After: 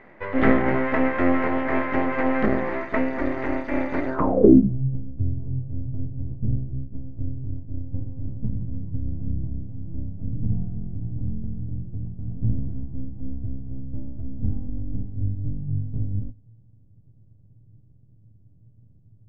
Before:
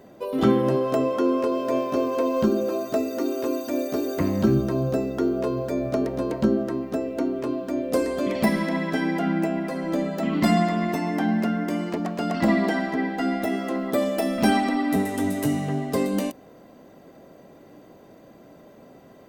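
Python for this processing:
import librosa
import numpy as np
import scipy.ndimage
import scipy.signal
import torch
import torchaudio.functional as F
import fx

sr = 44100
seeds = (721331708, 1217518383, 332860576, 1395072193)

y = fx.dynamic_eq(x, sr, hz=260.0, q=5.7, threshold_db=-40.0, ratio=4.0, max_db=8)
y = np.maximum(y, 0.0)
y = fx.filter_sweep_lowpass(y, sr, from_hz=2000.0, to_hz=110.0, start_s=4.07, end_s=4.78, q=6.8)
y = y * librosa.db_to_amplitude(1.0)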